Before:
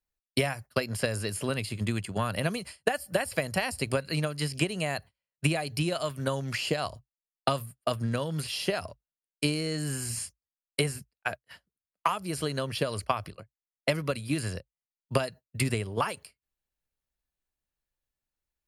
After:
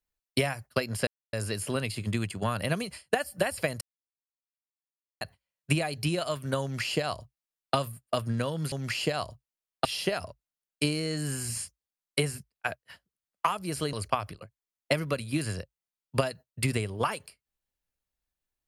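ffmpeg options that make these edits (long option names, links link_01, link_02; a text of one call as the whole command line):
ffmpeg -i in.wav -filter_complex "[0:a]asplit=7[link_01][link_02][link_03][link_04][link_05][link_06][link_07];[link_01]atrim=end=1.07,asetpts=PTS-STARTPTS,afade=type=out:start_time=1.066:duration=0.004:curve=hsin,apad=pad_dur=0.26[link_08];[link_02]atrim=start=1.07:end=3.55,asetpts=PTS-STARTPTS,afade=type=in:duration=0.004:curve=hsin,afade=type=out:start_time=2.476:duration=0.004:curve=hsin[link_09];[link_03]atrim=start=3.55:end=4.95,asetpts=PTS-STARTPTS,volume=0[link_10];[link_04]atrim=start=4.95:end=8.462,asetpts=PTS-STARTPTS,afade=type=in:duration=0.004:curve=hsin[link_11];[link_05]atrim=start=6.358:end=7.492[link_12];[link_06]atrim=start=8.458:end=12.542[link_13];[link_07]atrim=start=12.898[link_14];[link_08][link_09][link_10][link_11]concat=n=4:v=0:a=1[link_15];[link_15][link_12]acrossfade=duration=0.004:curve1=hsin:curve2=hsin[link_16];[link_16][link_13]acrossfade=duration=0.004:curve1=hsin:curve2=hsin[link_17];[link_17][link_14]acrossfade=duration=0.004:curve1=hsin:curve2=hsin" out.wav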